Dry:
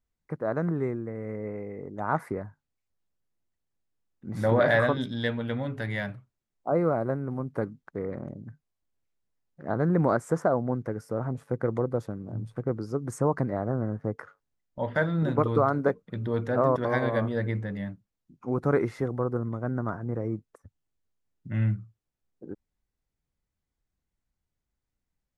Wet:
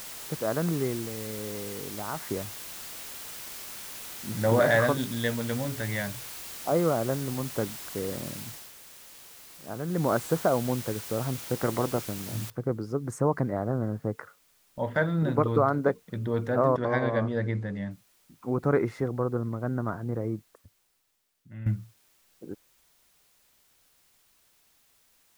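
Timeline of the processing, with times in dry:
1.05–2.31 s: compression 2.5:1, threshold -32 dBFS
8.42–10.18 s: dip -8.5 dB, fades 0.31 s linear
11.53–12.00 s: spectral peaks clipped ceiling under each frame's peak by 13 dB
12.50 s: noise floor step -41 dB -65 dB
16.76–17.91 s: distance through air 56 m
20.27–21.66 s: fade out quadratic, to -13.5 dB

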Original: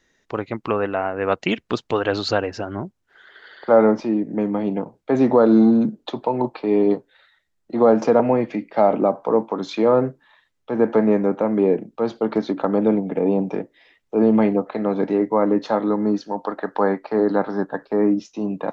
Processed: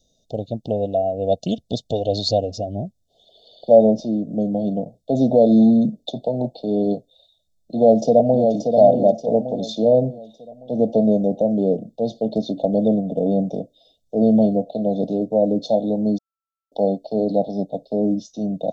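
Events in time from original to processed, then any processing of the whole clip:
7.75–8.53 s: echo throw 580 ms, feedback 45%, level -5 dB
16.18–16.72 s: bleep 1.33 kHz -23 dBFS
whole clip: Chebyshev band-stop 680–3500 Hz, order 4; comb 1.4 ms, depth 69%; trim +2 dB

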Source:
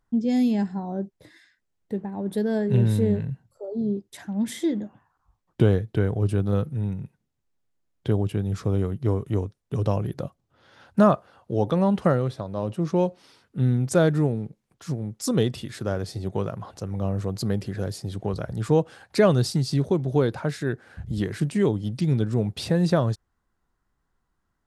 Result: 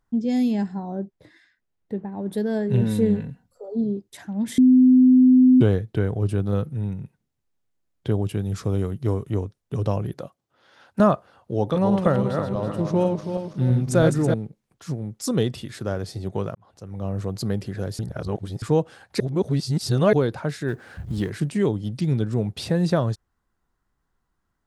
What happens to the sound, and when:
0.95–2.17 s: low-pass 3.4 kHz 6 dB/octave
2.81–3.84 s: comb 4.1 ms
4.58–5.61 s: bleep 255 Hz -10 dBFS
8.22–9.26 s: treble shelf 4.1 kHz +6 dB
10.14–11.00 s: high-pass 360 Hz 6 dB/octave
11.58–14.34 s: backward echo that repeats 163 ms, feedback 62%, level -5 dB
16.55–17.20 s: fade in
17.99–18.62 s: reverse
19.20–20.13 s: reverse
20.68–21.30 s: companding laws mixed up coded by mu

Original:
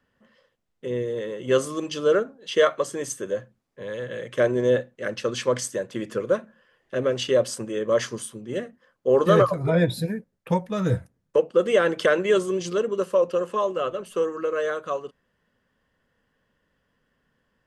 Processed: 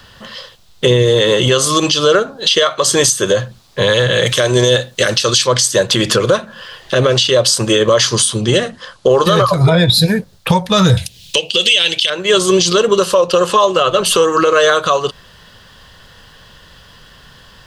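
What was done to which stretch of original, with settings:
4.26–5.47 s: treble shelf 3.8 kHz +11 dB
8.13–9.17 s: careless resampling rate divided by 2×, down none, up filtered
10.97–12.10 s: resonant high shelf 1.9 kHz +13.5 dB, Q 3
whole clip: graphic EQ 250/500/2000/4000 Hz -12/-6/-7/+11 dB; compression 6:1, threshold -39 dBFS; loudness maximiser +33 dB; trim -1 dB

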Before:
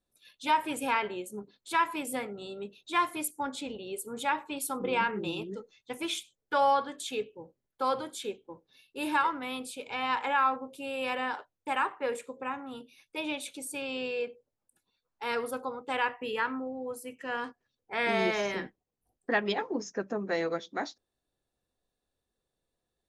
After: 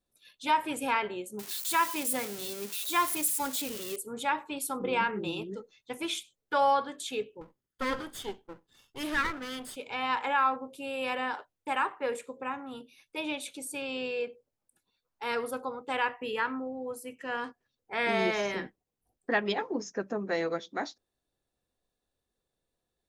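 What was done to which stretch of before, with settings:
1.39–3.96 s: zero-crossing glitches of -26.5 dBFS
7.41–9.76 s: comb filter that takes the minimum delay 0.61 ms

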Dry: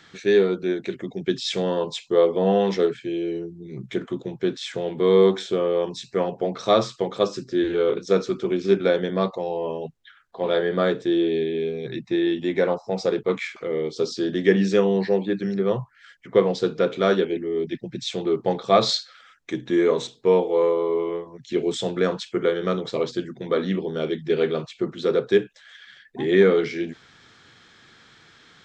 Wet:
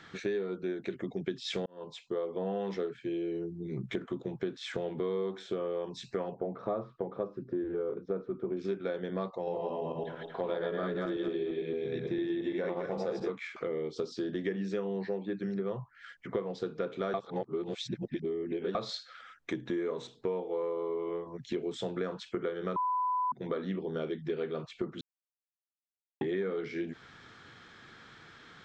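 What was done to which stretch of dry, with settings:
1.66–2.68 s: fade in
6.35–8.57 s: Bessel low-pass 930 Hz
9.36–13.30 s: backward echo that repeats 113 ms, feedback 50%, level 0 dB
17.14–18.75 s: reverse
22.76–23.32 s: bleep 1 kHz -15.5 dBFS
25.01–26.21 s: mute
whole clip: treble shelf 3.3 kHz -9 dB; compression 6:1, threshold -32 dBFS; peaking EQ 1.3 kHz +2.5 dB

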